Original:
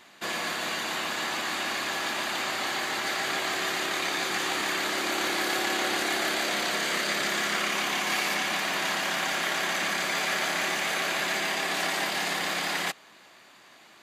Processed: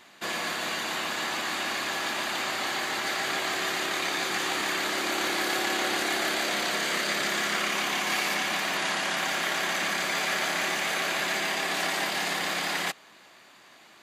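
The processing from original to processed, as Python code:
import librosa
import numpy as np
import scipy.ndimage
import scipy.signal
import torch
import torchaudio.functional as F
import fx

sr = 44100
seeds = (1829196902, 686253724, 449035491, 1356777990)

y = fx.brickwall_lowpass(x, sr, high_hz=12000.0, at=(8.77, 9.17))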